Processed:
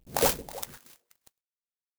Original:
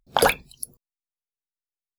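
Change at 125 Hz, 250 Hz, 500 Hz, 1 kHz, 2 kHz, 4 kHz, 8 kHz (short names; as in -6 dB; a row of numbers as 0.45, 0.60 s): -2.5, -3.5, -6.0, -9.0, -12.0, -7.0, -1.0 dB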